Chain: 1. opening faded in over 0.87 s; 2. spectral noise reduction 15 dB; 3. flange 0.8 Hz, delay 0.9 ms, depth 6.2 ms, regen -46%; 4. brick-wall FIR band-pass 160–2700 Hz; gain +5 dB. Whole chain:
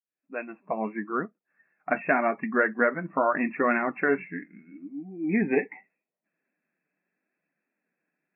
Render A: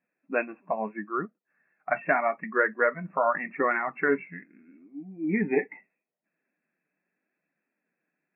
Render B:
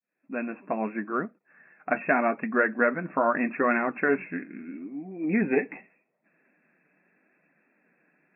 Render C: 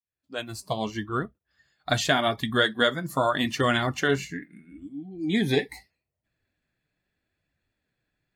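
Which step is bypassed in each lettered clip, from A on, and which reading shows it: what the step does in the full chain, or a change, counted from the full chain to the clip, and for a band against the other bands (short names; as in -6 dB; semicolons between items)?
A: 1, 250 Hz band -3.5 dB; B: 2, momentary loudness spread change -1 LU; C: 4, 125 Hz band +10.5 dB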